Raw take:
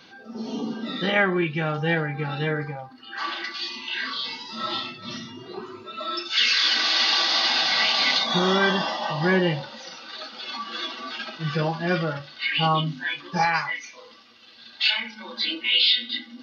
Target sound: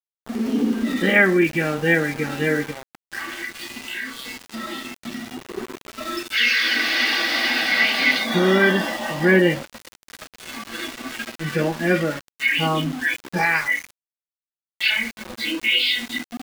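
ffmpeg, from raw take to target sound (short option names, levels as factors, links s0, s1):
-filter_complex "[0:a]equalizer=f=125:t=o:w=1:g=-7,equalizer=f=250:t=o:w=1:g=12,equalizer=f=500:t=o:w=1:g=4,equalizer=f=1000:t=o:w=1:g=-7,equalizer=f=2000:t=o:w=1:g=11,equalizer=f=4000:t=o:w=1:g=-7,aeval=exprs='val(0)*gte(abs(val(0)),0.0316)':c=same,asettb=1/sr,asplit=3[s0][s1][s2];[s0]atrim=end=3.184[s3];[s1]atrim=start=3.18:end=5.58,asetpts=PTS-STARTPTS,afade=t=in:d=0.004:c=qsin,afade=t=out:st=2.396:d=0.004:c=qsin,acompressor=threshold=0.0355:ratio=2.5[s4];[s2]atrim=start=5.576[s5];[s3][s4]acrossfade=d=0.004:c1=hsin:c2=qsin[s6];[s6][s5]acrossfade=d=0.004:c1=qsin:c2=hsin"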